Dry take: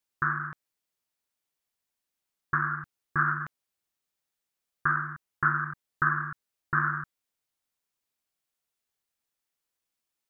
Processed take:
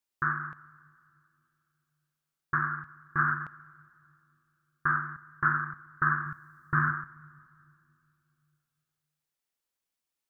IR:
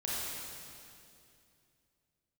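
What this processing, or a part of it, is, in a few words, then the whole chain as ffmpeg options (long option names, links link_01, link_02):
keyed gated reverb: -filter_complex "[0:a]asettb=1/sr,asplit=3[link_01][link_02][link_03];[link_01]atrim=end=6.264[link_04];[link_02]atrim=start=6.26:end=6.89,asetpts=PTS-STARTPTS,afade=type=in:duration=0.004:curve=qsin,afade=type=out:start_time=0.626:duration=0.004:curve=qsin,bass=frequency=250:gain=6,treble=frequency=4000:gain=8[link_05];[link_03]atrim=start=6.886[link_06];[link_04][link_05]acrossfade=duration=0.004:curve1=hsin:curve2=qsin[link_07];[link_07][link_06]acrossfade=duration=0.004:curve1=qsin:curve2=hsin,asplit=3[link_08][link_09][link_10];[1:a]atrim=start_sample=2205[link_11];[link_09][link_11]afir=irnorm=-1:irlink=0[link_12];[link_10]apad=whole_len=454035[link_13];[link_12][link_13]sidechaingate=range=-13dB:threshold=-26dB:ratio=16:detection=peak,volume=-8.5dB[link_14];[link_08][link_14]amix=inputs=2:normalize=0,volume=-3dB"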